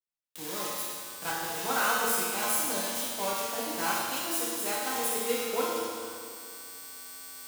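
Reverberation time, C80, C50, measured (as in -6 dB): 2.2 s, -0.5 dB, -2.5 dB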